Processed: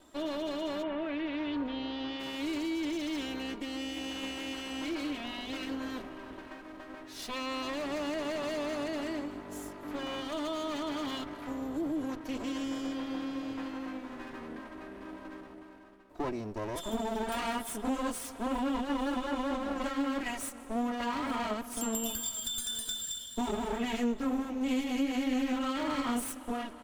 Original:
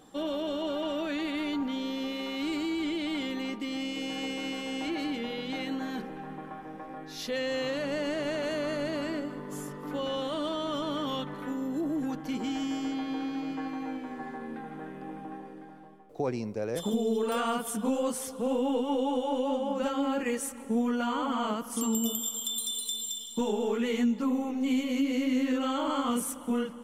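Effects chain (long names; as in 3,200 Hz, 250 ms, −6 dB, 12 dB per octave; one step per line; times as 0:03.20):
lower of the sound and its delayed copy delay 3.1 ms
0:00.82–0:02.19: low-pass filter 2,500 Hz → 5,200 Hz 24 dB per octave
single-tap delay 861 ms −22.5 dB
level −2 dB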